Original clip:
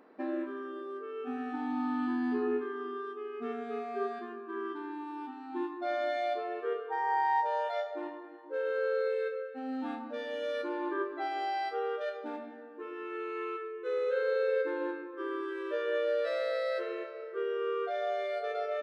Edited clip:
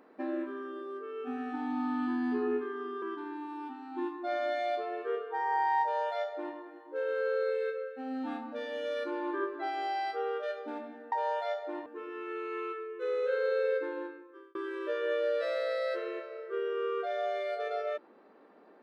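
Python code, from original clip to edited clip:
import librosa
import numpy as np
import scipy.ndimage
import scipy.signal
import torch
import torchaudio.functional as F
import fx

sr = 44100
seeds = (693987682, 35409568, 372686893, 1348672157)

y = fx.edit(x, sr, fx.cut(start_s=3.02, length_s=1.58),
    fx.duplicate(start_s=7.4, length_s=0.74, to_s=12.7),
    fx.fade_out_span(start_s=14.52, length_s=0.87), tone=tone)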